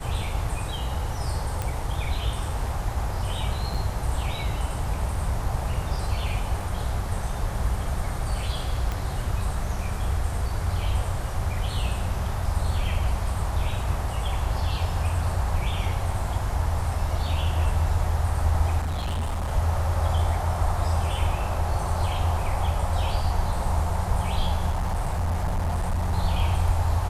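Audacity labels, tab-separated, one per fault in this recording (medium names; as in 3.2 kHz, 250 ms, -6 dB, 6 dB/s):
1.620000	1.620000	pop -14 dBFS
3.740000	3.750000	dropout 5.2 ms
6.600000	6.600000	dropout 2.9 ms
8.920000	8.920000	pop -16 dBFS
18.800000	19.510000	clipped -24 dBFS
24.700000	26.130000	clipped -21.5 dBFS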